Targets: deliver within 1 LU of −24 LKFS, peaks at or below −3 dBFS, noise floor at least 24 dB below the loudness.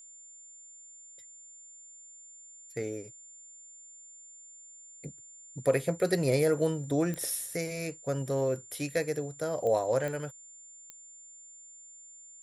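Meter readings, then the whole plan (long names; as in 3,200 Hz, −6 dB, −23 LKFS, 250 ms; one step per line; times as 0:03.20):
number of clicks 4; interfering tone 7,200 Hz; level of the tone −49 dBFS; integrated loudness −31.0 LKFS; sample peak −14.0 dBFS; target loudness −24.0 LKFS
→ click removal
notch filter 7,200 Hz, Q 30
level +7 dB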